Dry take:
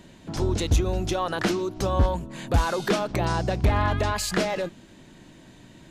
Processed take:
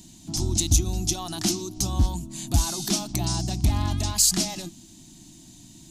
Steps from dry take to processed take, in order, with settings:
drawn EQ curve 330 Hz 0 dB, 490 Hz −28 dB, 700 Hz −5 dB, 1,600 Hz −15 dB, 6,000 Hz +13 dB

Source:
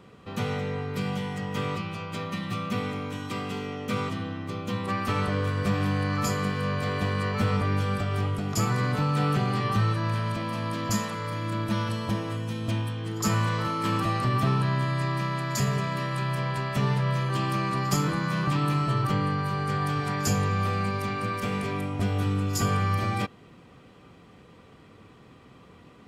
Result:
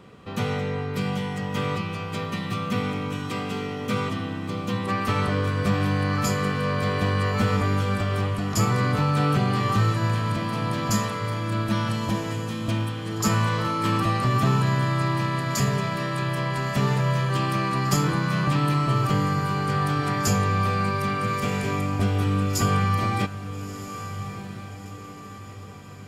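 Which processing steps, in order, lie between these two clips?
feedback delay with all-pass diffusion 1,327 ms, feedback 48%, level −12 dB
level +3 dB

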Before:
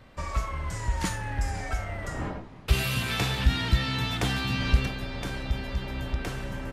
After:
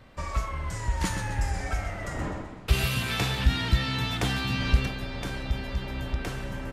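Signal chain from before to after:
0:00.88–0:02.88: feedback echo with a swinging delay time 127 ms, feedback 45%, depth 81 cents, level −7.5 dB

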